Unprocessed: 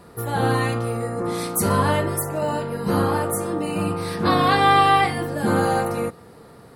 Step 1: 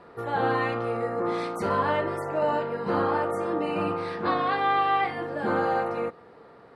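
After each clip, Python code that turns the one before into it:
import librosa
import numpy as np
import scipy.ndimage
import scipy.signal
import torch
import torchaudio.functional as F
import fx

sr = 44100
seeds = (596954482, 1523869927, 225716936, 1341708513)

y = scipy.signal.sosfilt(scipy.signal.butter(2, 6200.0, 'lowpass', fs=sr, output='sos'), x)
y = fx.bass_treble(y, sr, bass_db=-12, treble_db=-15)
y = fx.rider(y, sr, range_db=4, speed_s=0.5)
y = y * librosa.db_to_amplitude(-3.5)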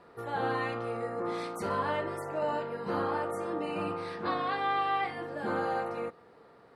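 y = fx.high_shelf(x, sr, hz=5000.0, db=7.5)
y = y * librosa.db_to_amplitude(-6.5)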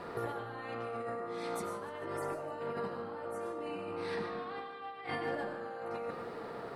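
y = fx.over_compress(x, sr, threshold_db=-44.0, ratio=-1.0)
y = fx.echo_feedback(y, sr, ms=148, feedback_pct=59, wet_db=-17)
y = fx.rev_freeverb(y, sr, rt60_s=0.89, hf_ratio=0.65, predelay_ms=65, drr_db=5.0)
y = y * librosa.db_to_amplitude(2.0)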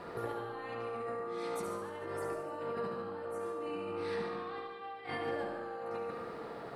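y = fx.echo_feedback(x, sr, ms=71, feedback_pct=53, wet_db=-7)
y = y * librosa.db_to_amplitude(-2.0)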